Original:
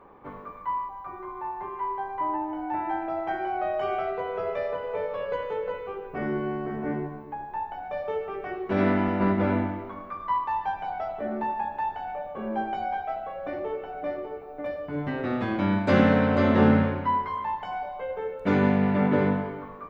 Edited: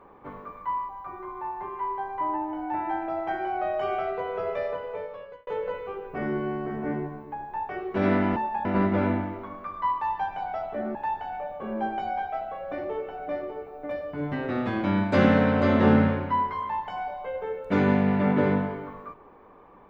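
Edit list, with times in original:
0:04.66–0:05.47: fade out linear
0:07.69–0:08.44: remove
0:11.41–0:11.70: move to 0:09.11

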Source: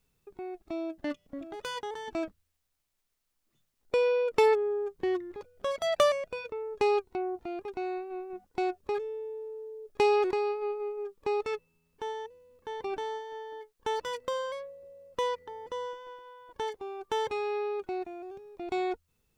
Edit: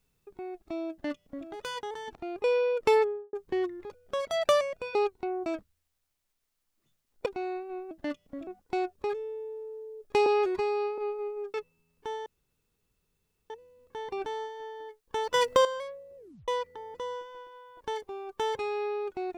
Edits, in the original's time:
0:00.91–0:01.47: duplicate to 0:08.32
0:02.15–0:03.95: swap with 0:07.38–0:07.67
0:04.49–0:04.84: fade out and dull
0:06.46–0:06.87: remove
0:10.11–0:10.59: time-stretch 1.5×
0:11.15–0:11.50: remove
0:12.22: splice in room tone 1.24 s
0:14.06–0:14.37: clip gain +11 dB
0:14.89: tape stop 0.31 s

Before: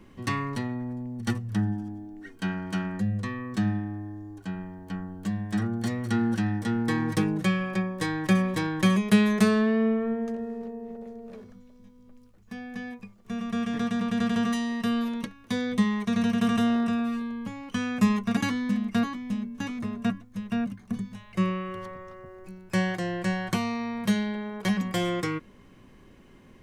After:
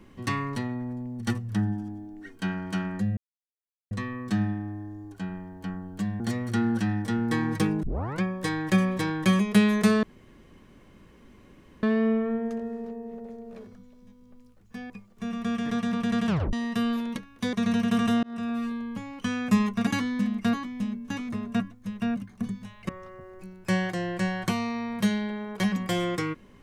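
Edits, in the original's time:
0:03.17: splice in silence 0.74 s
0:05.46–0:05.77: remove
0:07.40: tape start 0.38 s
0:09.60: splice in room tone 1.80 s
0:12.67–0:12.98: remove
0:14.36: tape stop 0.25 s
0:15.61–0:16.03: remove
0:16.73–0:17.24: fade in equal-power
0:21.39–0:21.94: remove

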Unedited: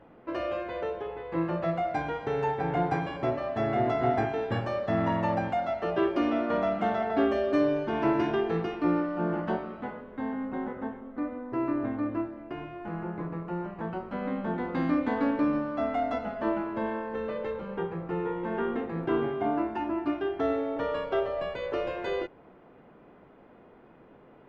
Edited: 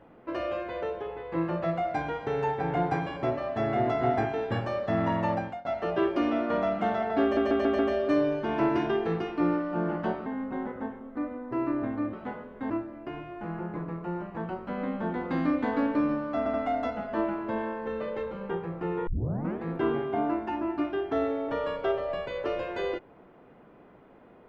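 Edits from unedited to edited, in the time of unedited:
0:05.32–0:05.65: fade out, to −23 dB
0:07.23: stutter 0.14 s, 5 plays
0:09.70–0:10.27: move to 0:12.14
0:15.82: stutter 0.08 s, 3 plays
0:18.35: tape start 0.56 s

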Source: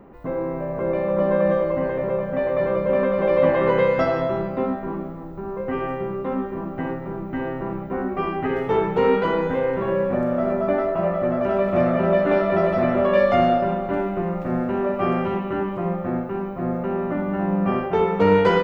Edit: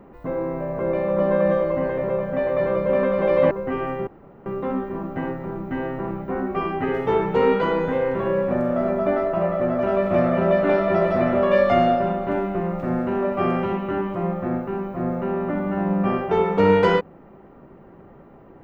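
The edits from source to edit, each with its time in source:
0:03.51–0:05.52: remove
0:06.08: splice in room tone 0.39 s

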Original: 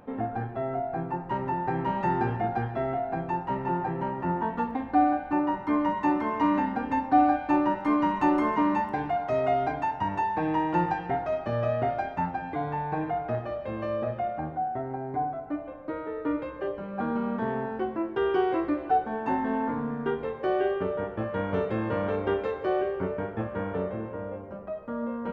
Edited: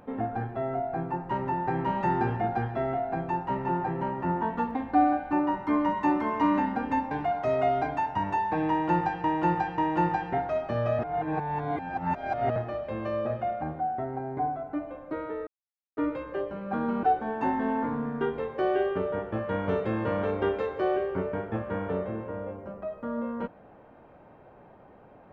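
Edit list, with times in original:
0:07.11–0:08.96: remove
0:10.55–0:11.09: repeat, 3 plays
0:11.76–0:13.33: reverse
0:16.24: splice in silence 0.50 s
0:17.30–0:18.88: remove

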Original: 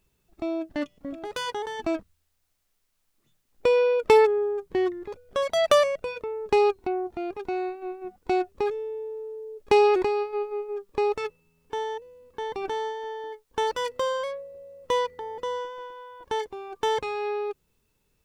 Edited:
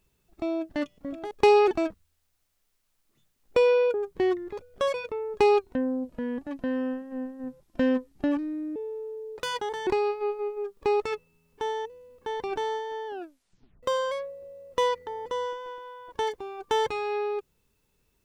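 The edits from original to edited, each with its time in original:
0:01.31–0:01.80: swap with 0:09.59–0:09.99
0:04.03–0:04.49: remove
0:05.49–0:06.06: remove
0:06.85–0:08.97: play speed 70%
0:13.19: tape stop 0.76 s

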